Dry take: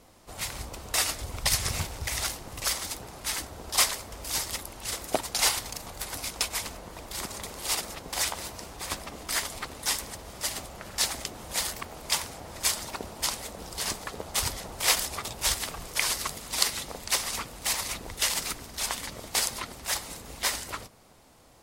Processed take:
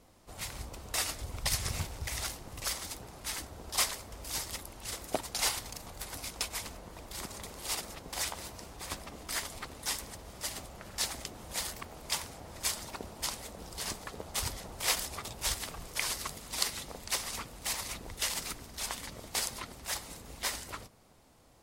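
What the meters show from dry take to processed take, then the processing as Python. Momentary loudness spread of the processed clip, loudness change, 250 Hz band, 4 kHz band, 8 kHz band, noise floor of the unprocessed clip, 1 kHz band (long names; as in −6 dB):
11 LU, −6.5 dB, −4.0 dB, −6.5 dB, −6.5 dB, −46 dBFS, −6.0 dB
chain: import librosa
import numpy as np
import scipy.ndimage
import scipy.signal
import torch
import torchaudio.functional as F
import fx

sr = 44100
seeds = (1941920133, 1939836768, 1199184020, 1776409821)

y = fx.low_shelf(x, sr, hz=340.0, db=3.5)
y = y * librosa.db_to_amplitude(-6.5)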